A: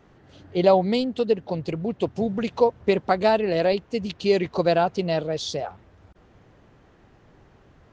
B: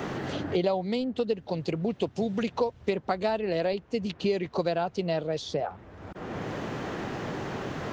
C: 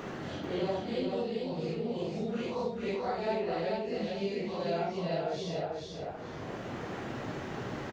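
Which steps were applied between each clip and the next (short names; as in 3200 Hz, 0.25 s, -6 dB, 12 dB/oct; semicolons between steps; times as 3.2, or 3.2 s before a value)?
three-band squash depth 100%; gain -6 dB
phase scrambler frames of 0.2 s; feedback echo 0.44 s, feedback 28%, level -3.5 dB; gain -6 dB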